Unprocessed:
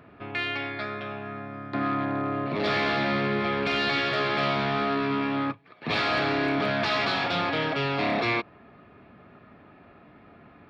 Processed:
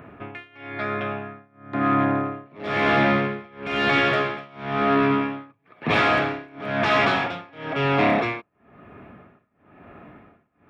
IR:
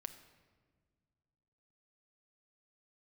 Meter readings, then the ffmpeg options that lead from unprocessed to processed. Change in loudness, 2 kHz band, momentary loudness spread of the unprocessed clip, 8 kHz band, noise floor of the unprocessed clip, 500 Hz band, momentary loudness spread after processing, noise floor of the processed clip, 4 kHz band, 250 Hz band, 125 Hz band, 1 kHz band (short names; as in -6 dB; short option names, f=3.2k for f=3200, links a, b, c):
+4.0 dB, +3.5 dB, 9 LU, n/a, -53 dBFS, +3.5 dB, 15 LU, -66 dBFS, -1.0 dB, +4.0 dB, +3.5 dB, +4.0 dB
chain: -af "equalizer=f=4.4k:w=2.3:g=-14,tremolo=f=1:d=0.97,volume=8dB"